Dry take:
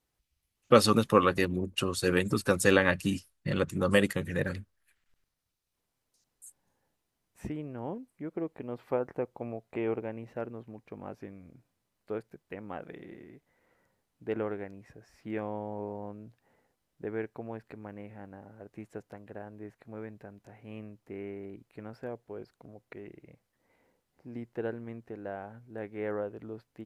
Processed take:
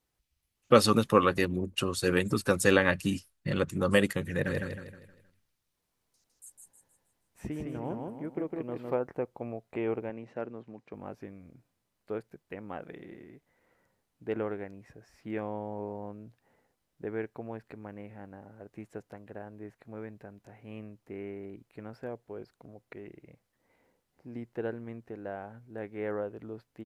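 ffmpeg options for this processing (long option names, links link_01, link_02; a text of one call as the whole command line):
ffmpeg -i in.wav -filter_complex "[0:a]asplit=3[link_01][link_02][link_03];[link_01]afade=type=out:start_time=4.45:duration=0.02[link_04];[link_02]aecho=1:1:157|314|471|628|785:0.708|0.283|0.113|0.0453|0.0181,afade=type=in:start_time=4.45:duration=0.02,afade=type=out:start_time=8.94:duration=0.02[link_05];[link_03]afade=type=in:start_time=8.94:duration=0.02[link_06];[link_04][link_05][link_06]amix=inputs=3:normalize=0,asettb=1/sr,asplit=3[link_07][link_08][link_09];[link_07]atrim=end=10.104[link_10];[link_08]atrim=start=10.1:end=10.94,asetpts=PTS-STARTPTS,afade=type=in:duration=0.004:curve=qsin,afade=type=out:start_time=0.836:duration=0.004:curve=qsin,highpass=140,lowpass=7100[link_11];[link_09]atrim=start=10.936[link_12];[link_10][link_11]acrossfade=duration=0.004:curve1=hsin:curve2=qsin[link_13];[link_13][link_12]acrossfade=duration=0.004:curve1=qsin:curve2=hsin" out.wav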